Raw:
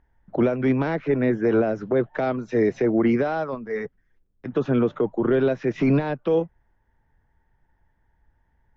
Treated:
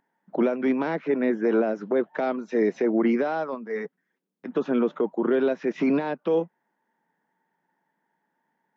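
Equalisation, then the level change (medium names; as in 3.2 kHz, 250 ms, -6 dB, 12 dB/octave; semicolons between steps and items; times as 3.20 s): brick-wall FIR high-pass 160 Hz; peaking EQ 940 Hz +3 dB 0.29 oct; -2.0 dB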